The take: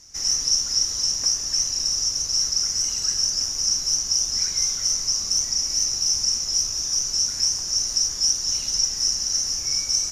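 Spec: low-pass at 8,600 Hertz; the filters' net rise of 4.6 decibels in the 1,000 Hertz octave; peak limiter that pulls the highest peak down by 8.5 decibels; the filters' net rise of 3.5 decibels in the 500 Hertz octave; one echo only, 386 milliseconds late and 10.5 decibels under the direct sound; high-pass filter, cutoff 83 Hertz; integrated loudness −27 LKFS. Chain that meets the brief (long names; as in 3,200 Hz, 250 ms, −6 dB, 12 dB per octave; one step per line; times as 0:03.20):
high-pass filter 83 Hz
low-pass filter 8,600 Hz
parametric band 500 Hz +3 dB
parametric band 1,000 Hz +5 dB
brickwall limiter −17.5 dBFS
single-tap delay 386 ms −10.5 dB
level −3.5 dB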